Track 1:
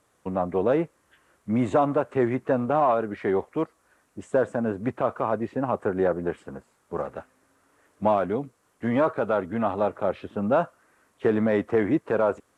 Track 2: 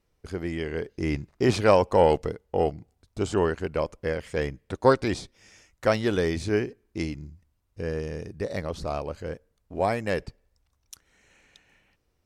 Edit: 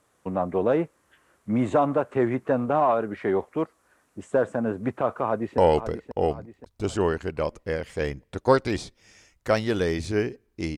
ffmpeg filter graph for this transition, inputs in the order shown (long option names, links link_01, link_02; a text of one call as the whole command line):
ffmpeg -i cue0.wav -i cue1.wav -filter_complex "[0:a]apad=whole_dur=10.77,atrim=end=10.77,atrim=end=5.582[link_01];[1:a]atrim=start=1.948:end=7.14[link_02];[link_01][link_02]acrossfade=duration=0.004:curve1=hsin:curve2=hsin,asplit=2[link_03][link_04];[link_04]afade=type=in:start_time=5.24:duration=0.01,afade=type=out:start_time=5.58:duration=0.01,aecho=0:1:530|1060|1590|2120|2650:0.316228|0.142302|0.0640361|0.0288163|0.0129673[link_05];[link_03][link_05]amix=inputs=2:normalize=0" out.wav